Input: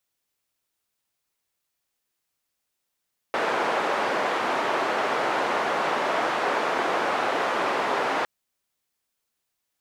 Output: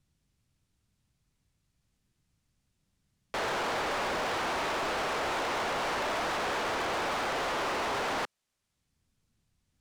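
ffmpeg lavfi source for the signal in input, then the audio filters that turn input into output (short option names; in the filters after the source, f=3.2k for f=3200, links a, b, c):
-f lavfi -i "anoisesrc=c=white:d=4.91:r=44100:seed=1,highpass=f=410,lowpass=f=1100,volume=-5.7dB"
-filter_complex "[0:a]lowpass=9k,acrossover=split=190|650|4100[a][b][c][d];[a]acompressor=mode=upward:threshold=-55dB:ratio=2.5[e];[e][b][c][d]amix=inputs=4:normalize=0,asoftclip=type=hard:threshold=-30dB"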